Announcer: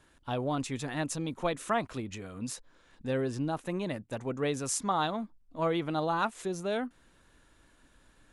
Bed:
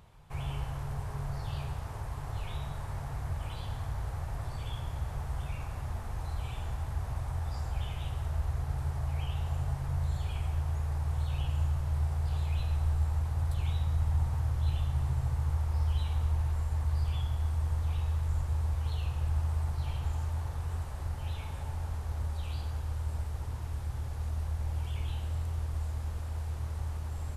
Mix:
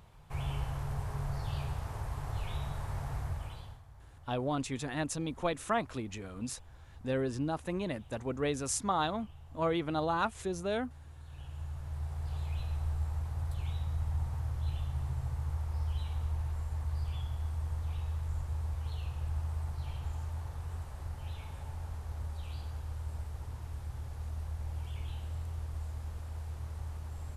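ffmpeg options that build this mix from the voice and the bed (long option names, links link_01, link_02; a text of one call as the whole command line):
ffmpeg -i stem1.wav -i stem2.wav -filter_complex "[0:a]adelay=4000,volume=-1.5dB[link_01];[1:a]volume=14dB,afade=type=out:start_time=3.16:duration=0.66:silence=0.112202,afade=type=in:start_time=11.19:duration=1.26:silence=0.199526[link_02];[link_01][link_02]amix=inputs=2:normalize=0" out.wav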